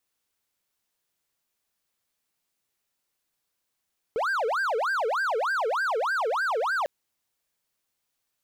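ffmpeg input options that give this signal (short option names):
-f lavfi -i "aevalsrc='0.0841*(1-4*abs(mod((1016*t-584/(2*PI*3.3)*sin(2*PI*3.3*t))+0.25,1)-0.5))':d=2.7:s=44100"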